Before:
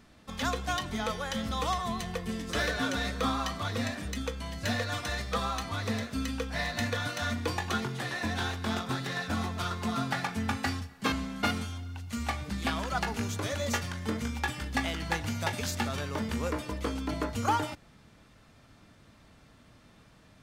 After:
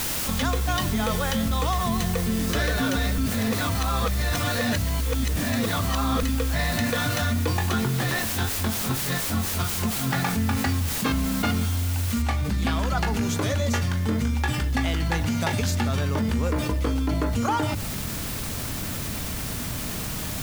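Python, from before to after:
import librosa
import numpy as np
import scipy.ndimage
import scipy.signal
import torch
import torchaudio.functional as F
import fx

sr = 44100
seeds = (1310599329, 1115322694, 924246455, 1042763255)

y = fx.tremolo_db(x, sr, hz=4.2, depth_db=27, at=(8.18, 10.13))
y = fx.noise_floor_step(y, sr, seeds[0], at_s=12.22, before_db=-42, after_db=-54, tilt_db=0.0)
y = fx.edit(y, sr, fx.reverse_span(start_s=3.18, length_s=3.05), tone=tone)
y = fx.low_shelf(y, sr, hz=240.0, db=9.5)
y = fx.hum_notches(y, sr, base_hz=50, count=4)
y = fx.env_flatten(y, sr, amount_pct=70)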